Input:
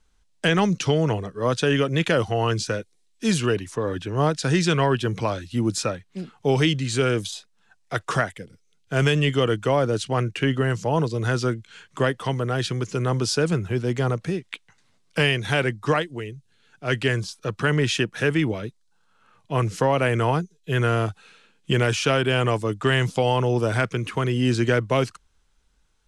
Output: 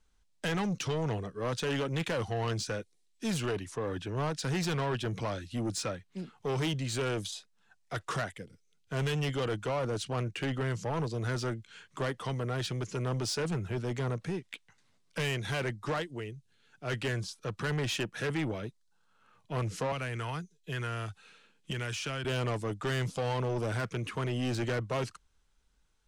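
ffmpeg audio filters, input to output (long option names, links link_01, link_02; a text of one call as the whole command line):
ffmpeg -i in.wav -filter_complex "[0:a]asettb=1/sr,asplit=3[link_01][link_02][link_03];[link_01]atrim=end=19.924[link_04];[link_02]atrim=start=19.92:end=22.25,asetpts=PTS-STARTPTS,afade=type=in:duration=0.004:curve=qsin,afade=type=out:start_time=2.326:duration=0.004:curve=qsin,acrossover=split=150|1200[link_05][link_06][link_07];[link_05]acompressor=threshold=-32dB:ratio=4[link_08];[link_06]acompressor=threshold=-35dB:ratio=4[link_09];[link_07]acompressor=threshold=-28dB:ratio=4[link_10];[link_08][link_09][link_10]amix=inputs=3:normalize=0[link_11];[link_03]atrim=start=22.246[link_12];[link_04][link_11]acrossfade=duration=0.004:curve1=hsin:curve2=qsin[link_13];[link_13][link_12]acrossfade=duration=0.004:curve1=qsin:curve2=hsin,asoftclip=type=tanh:threshold=-21.5dB,volume=-6dB" out.wav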